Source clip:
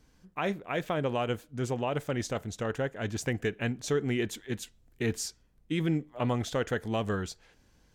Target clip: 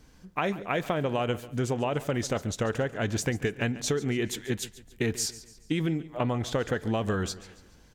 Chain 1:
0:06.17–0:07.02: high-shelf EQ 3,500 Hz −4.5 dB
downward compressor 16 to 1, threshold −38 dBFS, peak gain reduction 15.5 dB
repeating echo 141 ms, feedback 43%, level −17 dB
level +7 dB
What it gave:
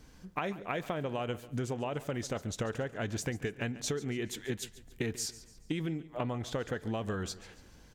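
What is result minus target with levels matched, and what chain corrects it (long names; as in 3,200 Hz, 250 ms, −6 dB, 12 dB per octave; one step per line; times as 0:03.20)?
downward compressor: peak gain reduction +7 dB
0:06.17–0:07.02: high-shelf EQ 3,500 Hz −4.5 dB
downward compressor 16 to 1, threshold −30.5 dBFS, peak gain reduction 8.5 dB
repeating echo 141 ms, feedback 43%, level −17 dB
level +7 dB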